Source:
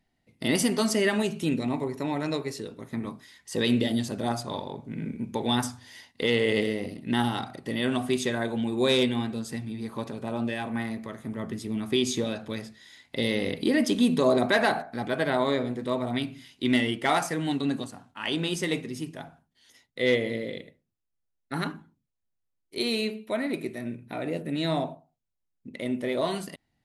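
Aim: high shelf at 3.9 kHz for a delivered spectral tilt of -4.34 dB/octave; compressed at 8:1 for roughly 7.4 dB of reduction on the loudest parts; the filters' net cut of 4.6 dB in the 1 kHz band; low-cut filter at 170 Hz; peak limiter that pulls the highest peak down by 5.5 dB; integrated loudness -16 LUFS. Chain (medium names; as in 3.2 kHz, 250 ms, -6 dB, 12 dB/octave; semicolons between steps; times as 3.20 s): high-pass 170 Hz; peaking EQ 1 kHz -6 dB; treble shelf 3.9 kHz -7.5 dB; compression 8:1, threshold -27 dBFS; trim +19 dB; peak limiter -4 dBFS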